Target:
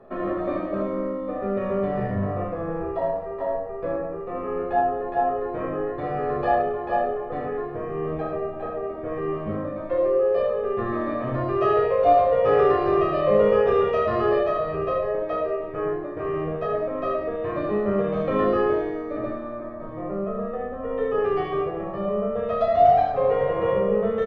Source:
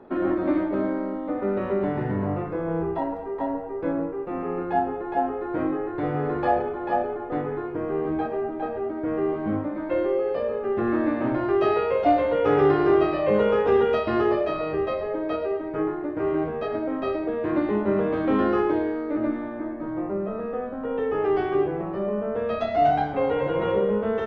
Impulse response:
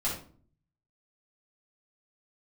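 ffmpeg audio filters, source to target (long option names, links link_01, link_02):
-filter_complex "[0:a]aecho=1:1:1.7:0.61,aecho=1:1:31|76:0.501|0.562,asplit=2[link_01][link_02];[1:a]atrim=start_sample=2205,lowpass=2000[link_03];[link_02][link_03]afir=irnorm=-1:irlink=0,volume=-11dB[link_04];[link_01][link_04]amix=inputs=2:normalize=0,volume=-4dB"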